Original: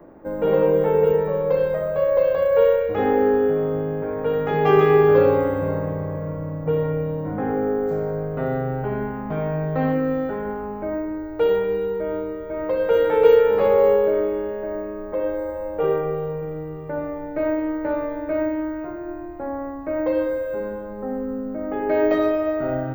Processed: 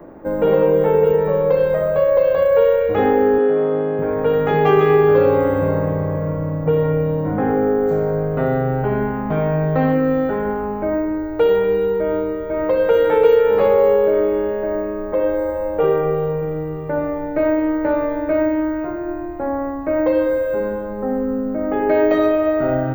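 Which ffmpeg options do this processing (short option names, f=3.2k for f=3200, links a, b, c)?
-filter_complex "[0:a]asettb=1/sr,asplit=3[a][b][c];[a]atrim=end=3.384[d];[b]atrim=start=3.38:end=3.99,asetpts=PTS-STARTPTS,afade=t=in:d=0.004:c=qsin,afade=t=out:st=0.606:d=0.004:c=qsin,highpass=240,lowpass=5.4k[e];[c]atrim=start=3.986[f];[d][e]acrossfade=d=0.004:c1=hsin:c2=qsin[g];[g][f]acrossfade=d=0.004:c1=qsin:c2=hsin,acompressor=threshold=-20dB:ratio=2,bandreject=f=5.1k:w=12,volume=6.5dB"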